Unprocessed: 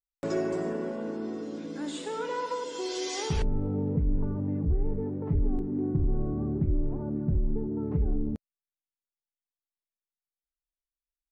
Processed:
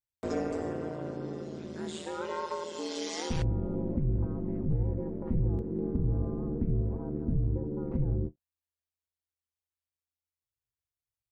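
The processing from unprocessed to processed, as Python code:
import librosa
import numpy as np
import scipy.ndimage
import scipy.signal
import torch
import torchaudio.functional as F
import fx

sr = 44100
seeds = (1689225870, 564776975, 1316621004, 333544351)

y = x * np.sin(2.0 * np.pi * 82.0 * np.arange(len(x)) / sr)
y = fx.end_taper(y, sr, db_per_s=510.0)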